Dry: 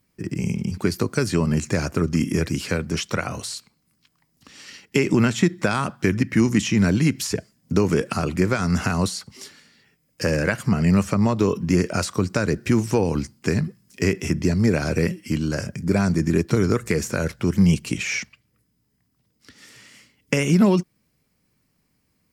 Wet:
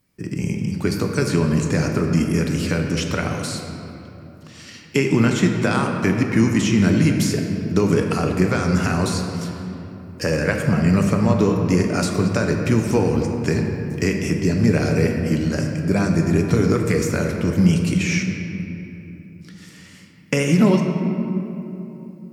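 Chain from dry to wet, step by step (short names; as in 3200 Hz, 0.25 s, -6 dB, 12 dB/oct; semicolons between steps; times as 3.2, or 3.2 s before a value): shoebox room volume 160 m³, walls hard, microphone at 0.33 m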